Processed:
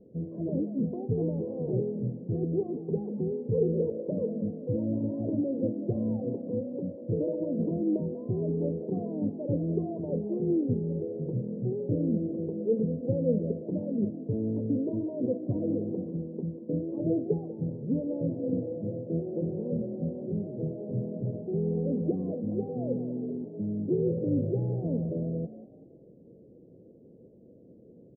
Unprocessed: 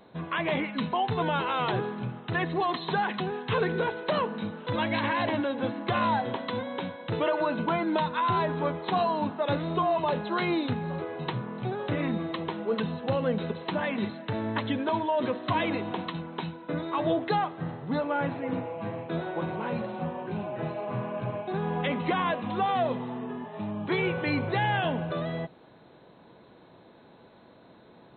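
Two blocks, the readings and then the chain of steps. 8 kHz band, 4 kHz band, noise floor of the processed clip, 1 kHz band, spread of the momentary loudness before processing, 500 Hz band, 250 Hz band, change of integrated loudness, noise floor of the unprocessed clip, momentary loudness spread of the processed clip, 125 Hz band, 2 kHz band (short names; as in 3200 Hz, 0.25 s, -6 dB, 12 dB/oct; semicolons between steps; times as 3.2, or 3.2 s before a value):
n/a, under -40 dB, -54 dBFS, under -20 dB, 8 LU, -1.0 dB, +2.5 dB, -1.5 dB, -54 dBFS, 6 LU, +2.5 dB, under -40 dB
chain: elliptic low-pass 500 Hz, stop band 60 dB; on a send: frequency-shifting echo 0.19 s, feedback 33%, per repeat +54 Hz, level -15.5 dB; on the sum: gain +2.5 dB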